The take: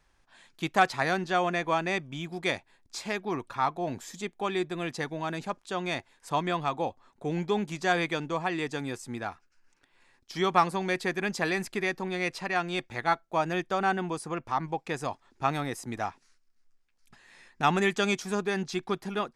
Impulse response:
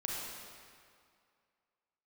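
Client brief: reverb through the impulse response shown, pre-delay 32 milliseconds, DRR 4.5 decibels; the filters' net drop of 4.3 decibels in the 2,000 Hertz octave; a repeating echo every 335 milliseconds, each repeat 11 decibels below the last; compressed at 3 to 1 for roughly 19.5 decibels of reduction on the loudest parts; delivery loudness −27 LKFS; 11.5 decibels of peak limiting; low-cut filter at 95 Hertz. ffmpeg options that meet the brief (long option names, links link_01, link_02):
-filter_complex "[0:a]highpass=95,equalizer=frequency=2000:width_type=o:gain=-5.5,acompressor=threshold=-46dB:ratio=3,alimiter=level_in=14.5dB:limit=-24dB:level=0:latency=1,volume=-14.5dB,aecho=1:1:335|670|1005:0.282|0.0789|0.0221,asplit=2[link_01][link_02];[1:a]atrim=start_sample=2205,adelay=32[link_03];[link_02][link_03]afir=irnorm=-1:irlink=0,volume=-7.5dB[link_04];[link_01][link_04]amix=inputs=2:normalize=0,volume=21dB"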